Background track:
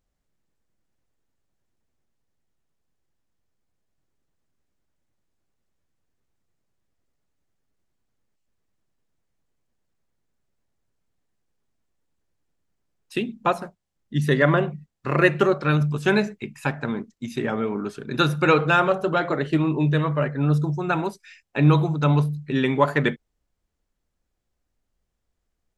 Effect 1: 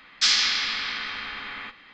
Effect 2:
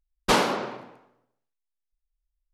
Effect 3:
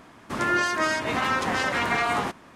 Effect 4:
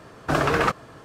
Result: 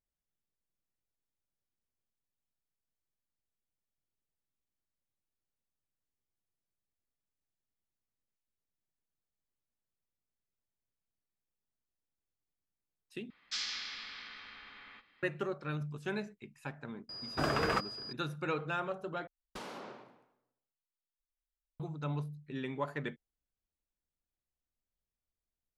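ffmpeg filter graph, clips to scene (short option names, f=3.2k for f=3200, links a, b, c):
-filter_complex "[0:a]volume=-17.5dB[a];[4:a]aeval=exprs='val(0)+0.0251*sin(2*PI*4900*n/s)':c=same[b];[2:a]acompressor=threshold=-25dB:ratio=6:attack=3.2:release=140:knee=1:detection=peak[c];[a]asplit=3[d][e][f];[d]atrim=end=13.304[g];[1:a]atrim=end=1.93,asetpts=PTS-STARTPTS,volume=-17.5dB[h];[e]atrim=start=15.226:end=19.274[i];[c]atrim=end=2.53,asetpts=PTS-STARTPTS,volume=-16dB[j];[f]atrim=start=21.796[k];[b]atrim=end=1.04,asetpts=PTS-STARTPTS,volume=-10.5dB,afade=t=in:d=0.004:c=hsin,afade=t=out:st=1.036:d=0.004:c=hsin,adelay=17090[l];[g][h]acrossfade=d=0.004:c1=hsin:c2=hsin[m];[m][i]acrossfade=d=0.004:c1=hsin:c2=hsin[n];[n][j]acrossfade=d=0.004:c1=hsin:c2=hsin[o];[o][k]acrossfade=d=0.004:c1=hsin:c2=hsin[p];[p][l]amix=inputs=2:normalize=0"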